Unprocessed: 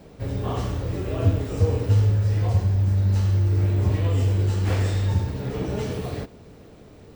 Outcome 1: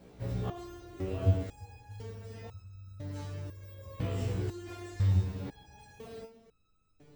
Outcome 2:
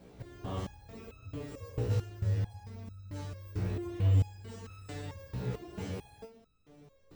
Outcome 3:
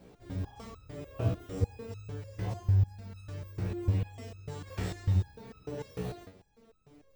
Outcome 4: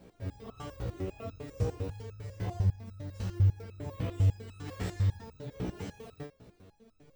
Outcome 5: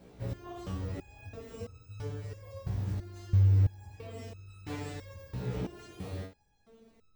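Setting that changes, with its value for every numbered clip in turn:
resonator arpeggio, rate: 2 Hz, 4.5 Hz, 6.7 Hz, 10 Hz, 3 Hz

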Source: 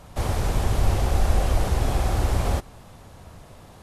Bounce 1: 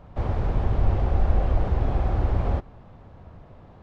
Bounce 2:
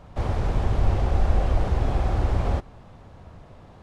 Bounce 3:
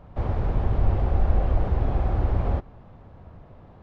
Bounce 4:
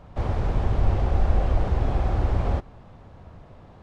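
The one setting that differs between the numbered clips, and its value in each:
tape spacing loss, at 10 kHz: 38 dB, 20 dB, 46 dB, 28 dB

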